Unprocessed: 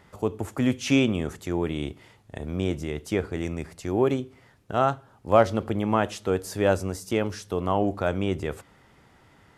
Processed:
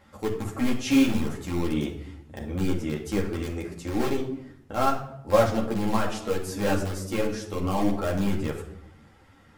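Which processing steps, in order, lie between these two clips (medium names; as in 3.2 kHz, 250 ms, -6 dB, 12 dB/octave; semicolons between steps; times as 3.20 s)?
in parallel at -8 dB: integer overflow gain 18.5 dB; on the sum: simulated room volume 1900 m³, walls furnished, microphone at 2.2 m; three-phase chorus; trim -2 dB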